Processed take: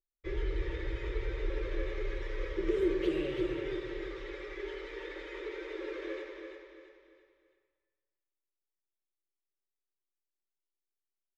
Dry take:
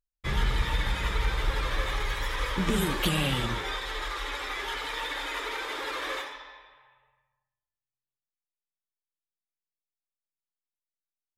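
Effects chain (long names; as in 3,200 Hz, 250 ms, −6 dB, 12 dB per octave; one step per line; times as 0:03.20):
drawn EQ curve 100 Hz 0 dB, 230 Hz −28 dB, 330 Hz +14 dB, 530 Hz +5 dB, 750 Hz −13 dB, 1,300 Hz −10 dB, 2,100 Hz −3 dB, 3,400 Hz −11 dB, 6,100 Hz −12 dB, 9,700 Hz −28 dB
on a send: repeating echo 336 ms, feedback 38%, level −6.5 dB
on the sum: rectangular room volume 2,900 cubic metres, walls furnished, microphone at 1.1 metres
level −8.5 dB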